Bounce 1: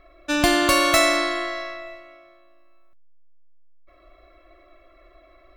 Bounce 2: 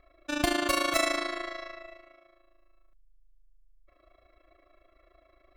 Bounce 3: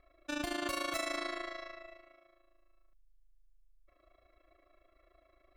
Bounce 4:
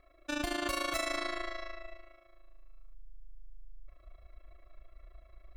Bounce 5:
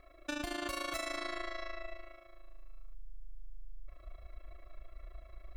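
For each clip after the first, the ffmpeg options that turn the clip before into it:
-af "tremolo=f=27:d=0.75,volume=-6dB"
-af "alimiter=limit=-20.5dB:level=0:latency=1:release=90,volume=-5dB"
-af "asubboost=boost=8.5:cutoff=86,volume=2.5dB"
-af "acompressor=threshold=-41dB:ratio=4,volume=4.5dB"

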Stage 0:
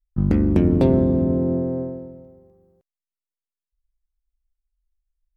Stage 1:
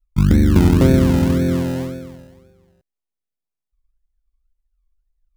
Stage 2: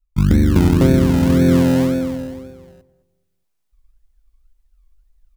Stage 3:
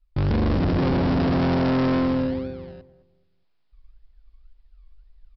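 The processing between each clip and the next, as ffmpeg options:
-filter_complex "[0:a]lowshelf=f=200:g=8.5,asplit=2[a][b];[b]acrusher=samples=31:mix=1:aa=0.000001:lfo=1:lforange=18.6:lforate=1.9,volume=-4dB[c];[a][c]amix=inputs=2:normalize=0,volume=-4dB"
-filter_complex "[0:a]asplit=2[a][b];[b]adelay=211,lowpass=f=840:p=1,volume=-13.5dB,asplit=2[c][d];[d]adelay=211,lowpass=f=840:p=1,volume=0.33,asplit=2[e][f];[f]adelay=211,lowpass=f=840:p=1,volume=0.33[g];[a][c][e][g]amix=inputs=4:normalize=0,dynaudnorm=f=120:g=5:m=13dB,volume=-1dB"
-af "alimiter=limit=-10dB:level=0:latency=1:release=42,aresample=11025,asoftclip=type=hard:threshold=-24dB,aresample=44100,volume=4.5dB"

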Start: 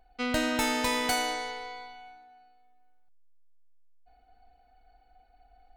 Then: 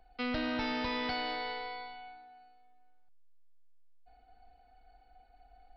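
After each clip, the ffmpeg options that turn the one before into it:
-filter_complex "[0:a]acrossover=split=240[a][b];[b]acompressor=threshold=-31dB:ratio=3[c];[a][c]amix=inputs=2:normalize=0,aresample=11025,asoftclip=type=tanh:threshold=-28dB,aresample=44100"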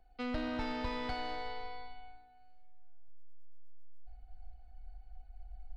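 -filter_complex "[0:a]asubboost=boost=8:cutoff=110,asplit=2[a][b];[b]adynamicsmooth=sensitivity=4.5:basefreq=510,volume=-2dB[c];[a][c]amix=inputs=2:normalize=0,volume=-6.5dB"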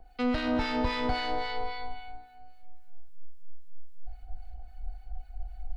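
-filter_complex "[0:a]asplit=2[a][b];[b]alimiter=level_in=12dB:limit=-24dB:level=0:latency=1,volume=-12dB,volume=-2dB[c];[a][c]amix=inputs=2:normalize=0,acrossover=split=1100[d][e];[d]aeval=exprs='val(0)*(1-0.7/2+0.7/2*cos(2*PI*3.7*n/s))':c=same[f];[e]aeval=exprs='val(0)*(1-0.7/2-0.7/2*cos(2*PI*3.7*n/s))':c=same[g];[f][g]amix=inputs=2:normalize=0,volume=8.5dB"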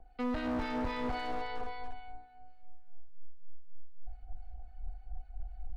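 -af "lowpass=f=1.6k:p=1,asoftclip=type=hard:threshold=-27.5dB,volume=-3dB"

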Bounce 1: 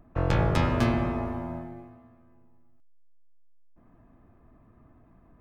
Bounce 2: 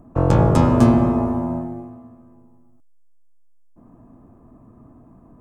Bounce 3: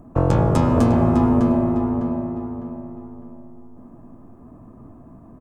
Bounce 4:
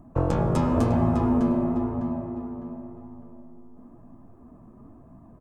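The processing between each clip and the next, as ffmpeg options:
-af "equalizer=f=125:t=o:w=1:g=5,equalizer=f=250:t=o:w=1:g=8,equalizer=f=500:t=o:w=1:g=4,equalizer=f=1k:t=o:w=1:g=6,equalizer=f=2k:t=o:w=1:g=-8,equalizer=f=4k:t=o:w=1:g=-5,equalizer=f=8k:t=o:w=1:g=9,volume=3.5dB"
-filter_complex "[0:a]acompressor=threshold=-17dB:ratio=3,asplit=2[a][b];[b]adelay=604,lowpass=f=2.6k:p=1,volume=-4.5dB,asplit=2[c][d];[d]adelay=604,lowpass=f=2.6k:p=1,volume=0.38,asplit=2[e][f];[f]adelay=604,lowpass=f=2.6k:p=1,volume=0.38,asplit=2[g][h];[h]adelay=604,lowpass=f=2.6k:p=1,volume=0.38,asplit=2[i][j];[j]adelay=604,lowpass=f=2.6k:p=1,volume=0.38[k];[c][e][g][i][k]amix=inputs=5:normalize=0[l];[a][l]amix=inputs=2:normalize=0,volume=2.5dB"
-af "flanger=delay=1:depth=4.4:regen=-48:speed=0.96:shape=sinusoidal,volume=-1.5dB"

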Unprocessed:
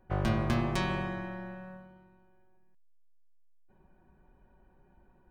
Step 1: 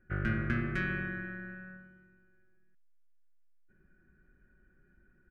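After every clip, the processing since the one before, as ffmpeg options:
-af "firequalizer=gain_entry='entry(330,0);entry(930,-23);entry(1400,11);entry(3700,-13);entry(11000,-18)':delay=0.05:min_phase=1,volume=-3dB"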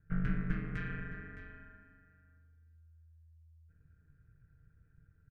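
-af "lowshelf=f=120:t=q:w=3:g=10,aeval=exprs='val(0)*sin(2*PI*81*n/s)':c=same,aecho=1:1:614:0.211,volume=-6dB"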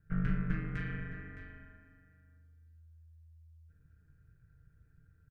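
-filter_complex "[0:a]asplit=2[a][b];[b]adelay=38,volume=-8dB[c];[a][c]amix=inputs=2:normalize=0"

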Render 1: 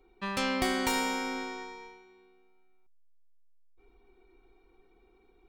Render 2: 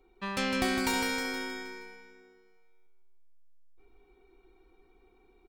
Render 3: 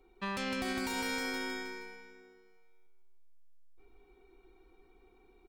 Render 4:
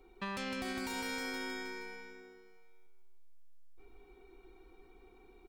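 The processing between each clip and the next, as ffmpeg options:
-af "aecho=1:1:157|314|471|628|785|942:0.562|0.281|0.141|0.0703|0.0351|0.0176,volume=-1dB"
-af "alimiter=level_in=2dB:limit=-24dB:level=0:latency=1:release=130,volume=-2dB"
-af "acompressor=threshold=-45dB:ratio=2,volume=3.5dB"

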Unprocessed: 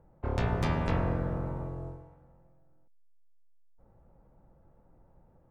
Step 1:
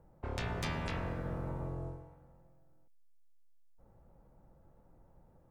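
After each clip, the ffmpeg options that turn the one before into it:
-filter_complex "[0:a]highshelf=f=4.2k:g=5,acrossover=split=1600[a][b];[a]alimiter=level_in=4dB:limit=-24dB:level=0:latency=1:release=88,volume=-4dB[c];[c][b]amix=inputs=2:normalize=0,volume=-1.5dB"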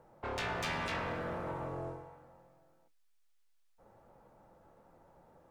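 -filter_complex "[0:a]asplit=2[a][b];[b]highpass=f=720:p=1,volume=20dB,asoftclip=type=tanh:threshold=-24dB[c];[a][c]amix=inputs=2:normalize=0,lowpass=f=5.2k:p=1,volume=-6dB,flanger=delay=8.1:depth=4.8:regen=-59:speed=0.48:shape=triangular"

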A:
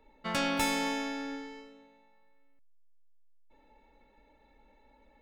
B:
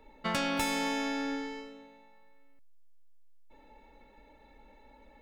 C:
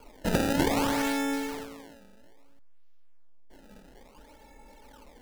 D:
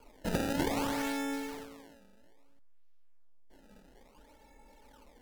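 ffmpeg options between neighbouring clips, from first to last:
-af "acompressor=threshold=-35dB:ratio=3,volume=5.5dB"
-af "acrusher=samples=23:mix=1:aa=0.000001:lfo=1:lforange=36.8:lforate=0.6,volume=5dB"
-af "volume=-6dB" -ar 44100 -c:a libvorbis -b:a 96k

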